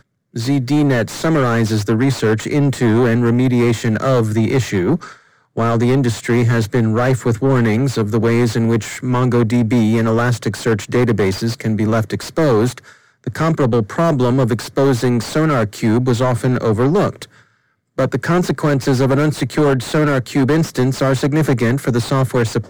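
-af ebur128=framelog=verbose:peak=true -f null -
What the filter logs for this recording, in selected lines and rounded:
Integrated loudness:
  I:         -16.1 LUFS
  Threshold: -26.4 LUFS
Loudness range:
  LRA:         2.0 LU
  Threshold: -36.4 LUFS
  LRA low:   -17.5 LUFS
  LRA high:  -15.4 LUFS
True peak:
  Peak:       -9.3 dBFS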